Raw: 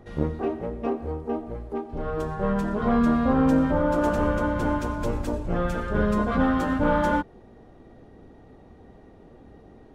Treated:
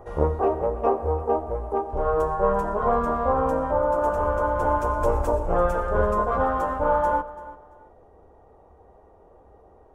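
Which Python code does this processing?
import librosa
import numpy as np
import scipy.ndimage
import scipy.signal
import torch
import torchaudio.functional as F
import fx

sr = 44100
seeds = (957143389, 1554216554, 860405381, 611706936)

y = fx.graphic_eq_10(x, sr, hz=(125, 250, 500, 1000, 2000, 4000), db=(-7, -11, 6, 9, -6, -12))
y = fx.rider(y, sr, range_db=4, speed_s=0.5)
y = fx.peak_eq(y, sr, hz=74.0, db=5.0, octaves=0.63)
y = fx.echo_feedback(y, sr, ms=338, feedback_pct=24, wet_db=-17.0)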